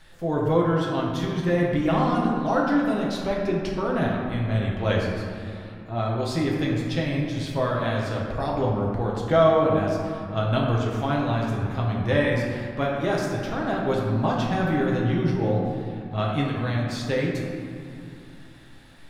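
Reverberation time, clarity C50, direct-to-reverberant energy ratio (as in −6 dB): 2.7 s, 0.5 dB, −3.5 dB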